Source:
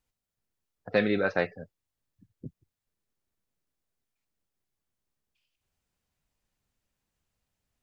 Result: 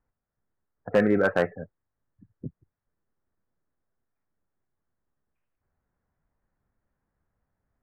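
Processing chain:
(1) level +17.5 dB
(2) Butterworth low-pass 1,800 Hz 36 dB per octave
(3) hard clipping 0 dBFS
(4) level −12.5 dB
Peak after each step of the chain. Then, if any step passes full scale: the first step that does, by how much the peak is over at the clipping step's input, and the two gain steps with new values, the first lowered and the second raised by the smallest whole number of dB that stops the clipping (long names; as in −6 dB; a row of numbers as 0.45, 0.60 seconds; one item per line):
+7.0, +6.0, 0.0, −12.5 dBFS
step 1, 6.0 dB
step 1 +11.5 dB, step 4 −6.5 dB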